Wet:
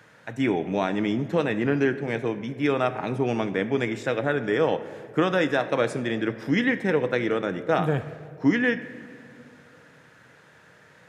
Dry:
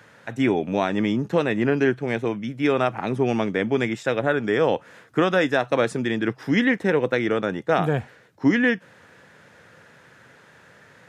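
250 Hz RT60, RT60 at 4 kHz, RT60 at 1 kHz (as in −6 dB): 2.6 s, 1.4 s, 1.9 s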